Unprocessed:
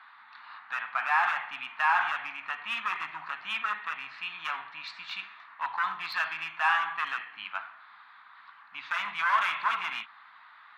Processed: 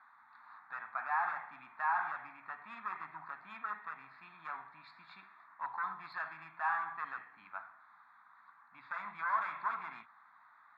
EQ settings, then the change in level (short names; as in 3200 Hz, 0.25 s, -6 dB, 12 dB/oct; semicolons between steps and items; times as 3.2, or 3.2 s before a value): running mean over 15 samples; low shelf 110 Hz +10.5 dB; -5.5 dB